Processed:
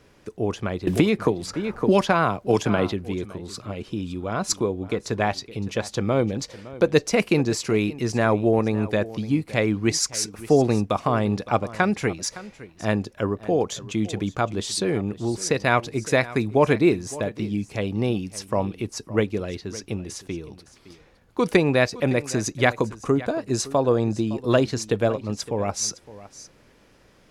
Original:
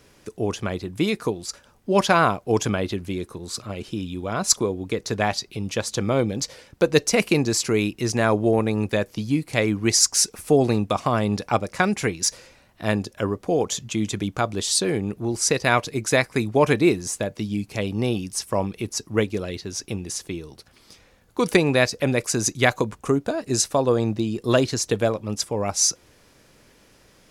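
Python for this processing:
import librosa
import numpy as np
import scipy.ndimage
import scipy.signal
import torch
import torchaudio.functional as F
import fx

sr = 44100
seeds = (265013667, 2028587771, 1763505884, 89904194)

y = fx.high_shelf(x, sr, hz=4500.0, db=-10.0)
y = y + 10.0 ** (-17.5 / 20.0) * np.pad(y, (int(562 * sr / 1000.0), 0))[:len(y)]
y = fx.band_squash(y, sr, depth_pct=100, at=(0.87, 2.92))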